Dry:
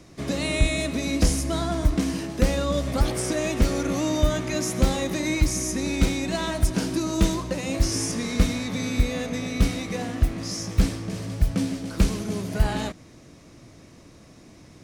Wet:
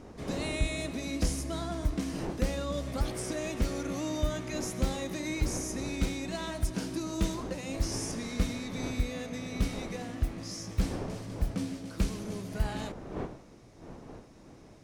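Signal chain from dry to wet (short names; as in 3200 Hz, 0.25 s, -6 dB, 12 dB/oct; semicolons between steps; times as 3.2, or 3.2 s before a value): wind noise 450 Hz -36 dBFS; gain -9 dB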